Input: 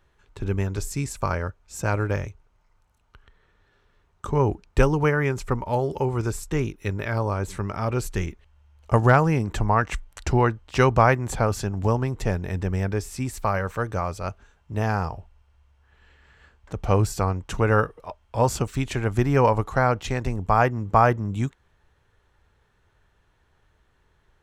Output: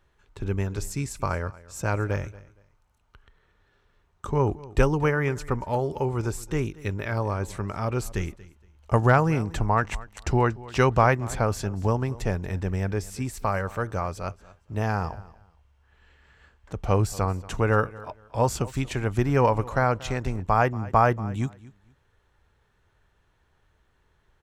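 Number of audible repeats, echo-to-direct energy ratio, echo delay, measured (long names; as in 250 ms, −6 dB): 2, −20.0 dB, 233 ms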